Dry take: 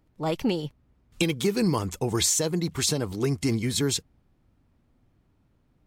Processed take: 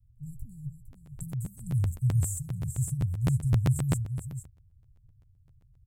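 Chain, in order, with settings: Chebyshev band-stop 130–7700 Hz, order 5; resonant low shelf 520 Hz +14 dB, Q 3; on a send: delay 459 ms -9 dB; on the sum: crackling interface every 0.13 s, samples 512, repeat, from 0.92 s; trim -7 dB

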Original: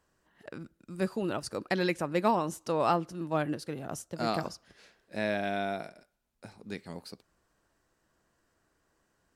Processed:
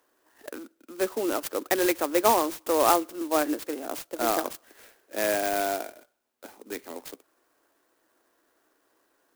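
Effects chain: steep high-pass 260 Hz 48 dB/octave; sampling jitter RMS 0.068 ms; trim +6 dB

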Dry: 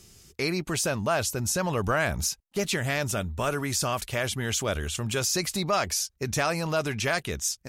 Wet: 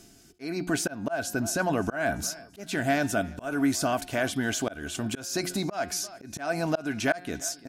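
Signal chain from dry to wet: peaking EQ 73 Hz -5.5 dB 1.5 oct; reverse; upward compressor, threshold -43 dBFS; reverse; de-hum 178.8 Hz, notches 30; small resonant body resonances 280/680/1500 Hz, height 15 dB, ringing for 40 ms; on a send: feedback delay 341 ms, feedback 51%, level -23.5 dB; on the sum: slow attack 241 ms; trim -3.5 dB

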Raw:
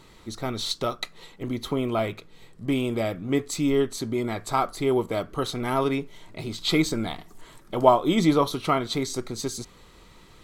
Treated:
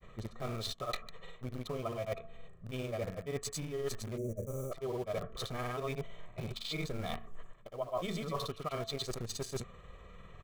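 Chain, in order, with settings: local Wiener filter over 9 samples; comb 1.7 ms, depth 72%; de-hum 223.1 Hz, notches 5; granulator, pitch spread up and down by 0 st; in parallel at -10.5 dB: bit crusher 5-bit; on the sum: time-frequency box 4.17–4.72 s, 630–5700 Hz -30 dB; reverse; compression 8:1, threshold -33 dBFS, peak gain reduction 24.5 dB; reverse; trim -1.5 dB

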